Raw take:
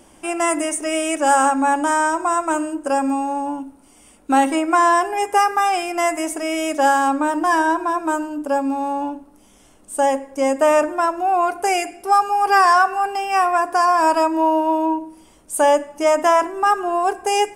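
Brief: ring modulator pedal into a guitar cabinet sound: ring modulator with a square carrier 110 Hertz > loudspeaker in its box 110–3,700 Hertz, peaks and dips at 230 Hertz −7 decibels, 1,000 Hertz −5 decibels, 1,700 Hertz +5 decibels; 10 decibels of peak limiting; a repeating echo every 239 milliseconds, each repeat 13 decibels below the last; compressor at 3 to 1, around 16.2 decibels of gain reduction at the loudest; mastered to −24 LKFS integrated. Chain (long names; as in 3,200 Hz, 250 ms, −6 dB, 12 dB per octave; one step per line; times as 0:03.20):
downward compressor 3 to 1, threshold −34 dBFS
brickwall limiter −30 dBFS
repeating echo 239 ms, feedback 22%, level −13 dB
ring modulator with a square carrier 110 Hz
loudspeaker in its box 110–3,700 Hz, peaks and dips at 230 Hz −7 dB, 1,000 Hz −5 dB, 1,700 Hz +5 dB
level +14.5 dB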